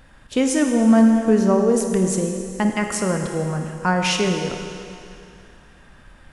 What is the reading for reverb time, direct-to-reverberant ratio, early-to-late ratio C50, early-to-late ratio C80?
2.5 s, 3.5 dB, 4.5 dB, 5.5 dB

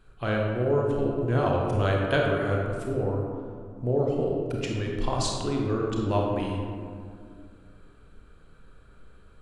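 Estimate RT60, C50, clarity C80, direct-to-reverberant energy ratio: 2.2 s, 1.0 dB, 2.5 dB, -1.5 dB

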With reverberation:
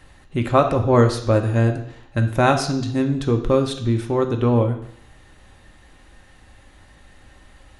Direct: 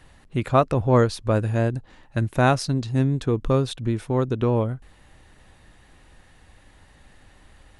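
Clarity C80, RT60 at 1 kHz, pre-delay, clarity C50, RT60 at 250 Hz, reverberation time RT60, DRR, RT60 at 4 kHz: 12.5 dB, 0.70 s, 3 ms, 10.0 dB, 0.65 s, 0.70 s, 4.0 dB, 0.70 s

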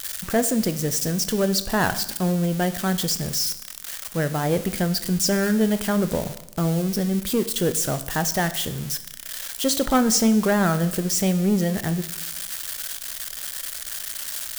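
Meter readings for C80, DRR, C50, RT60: 16.5 dB, 11.0 dB, 14.0 dB, 0.85 s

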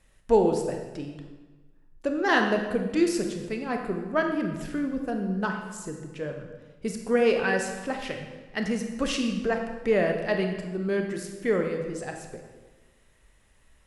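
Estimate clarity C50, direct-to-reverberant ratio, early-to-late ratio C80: 5.5 dB, 3.5 dB, 7.0 dB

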